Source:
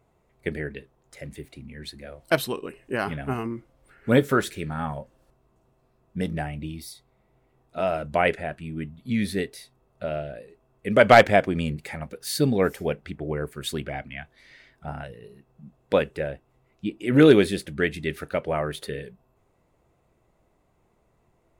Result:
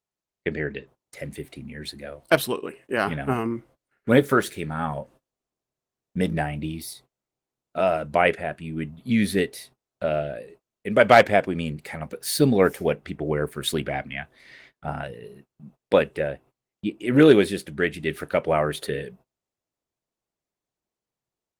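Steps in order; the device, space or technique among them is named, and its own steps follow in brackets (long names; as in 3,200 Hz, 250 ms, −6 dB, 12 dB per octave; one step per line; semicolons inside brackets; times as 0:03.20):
0:02.54–0:02.96: high-pass filter 68 Hz → 240 Hz 6 dB per octave
video call (high-pass filter 130 Hz 6 dB per octave; automatic gain control gain up to 6.5 dB; noise gate −48 dBFS, range −29 dB; level −1 dB; Opus 24 kbit/s 48,000 Hz)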